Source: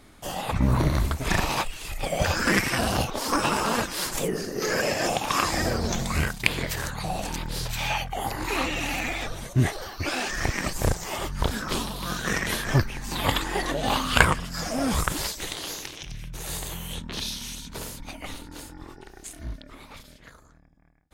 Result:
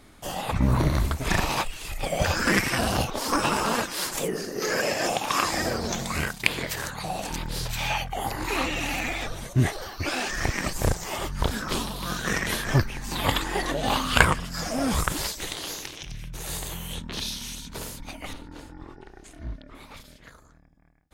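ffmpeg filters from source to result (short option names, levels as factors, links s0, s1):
-filter_complex "[0:a]asettb=1/sr,asplit=3[s0][s1][s2];[s0]atrim=end=3.754[s3];[s1]atrim=start=3.75:end=7.31,asetpts=PTS-STARTPTS,afade=t=in:d=0.004:c=qsin,afade=t=out:st=3.556:d=0.004:c=qsin,lowshelf=f=120:g=-9.5[s4];[s2]atrim=start=7.306[s5];[s3][s4]acrossfade=d=0.004:c1=hsin:c2=qsin[s6];[s6][s5]acrossfade=d=0.004:c1=qsin:c2=hsin,asettb=1/sr,asplit=3[s7][s8][s9];[s7]atrim=end=18.334[s10];[s8]atrim=start=18.33:end=19.75,asetpts=PTS-STARTPTS,afade=t=in:d=0.004:c=qsin,afade=t=out:st=1.416:d=0.004:c=qsin,aemphasis=mode=reproduction:type=75kf[s11];[s9]atrim=start=19.746[s12];[s10][s11]acrossfade=d=0.004:c1=hsin:c2=qsin[s13];[s13][s12]acrossfade=d=0.004:c1=qsin:c2=hsin"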